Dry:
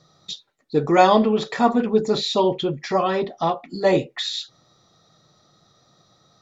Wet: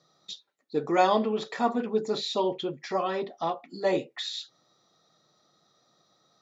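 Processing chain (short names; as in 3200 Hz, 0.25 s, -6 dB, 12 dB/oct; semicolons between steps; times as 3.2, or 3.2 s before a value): HPF 210 Hz 12 dB/oct; gain -7.5 dB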